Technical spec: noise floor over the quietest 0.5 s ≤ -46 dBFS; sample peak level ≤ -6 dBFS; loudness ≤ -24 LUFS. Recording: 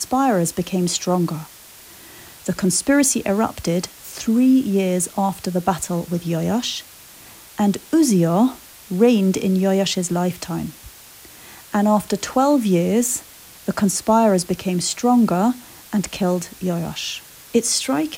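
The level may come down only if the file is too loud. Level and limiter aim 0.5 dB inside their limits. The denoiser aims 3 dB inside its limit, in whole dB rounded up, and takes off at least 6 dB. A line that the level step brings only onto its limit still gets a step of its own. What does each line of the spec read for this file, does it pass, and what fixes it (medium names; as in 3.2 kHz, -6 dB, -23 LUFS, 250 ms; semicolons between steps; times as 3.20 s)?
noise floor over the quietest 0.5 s -43 dBFS: fail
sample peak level -4.0 dBFS: fail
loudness -19.5 LUFS: fail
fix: trim -5 dB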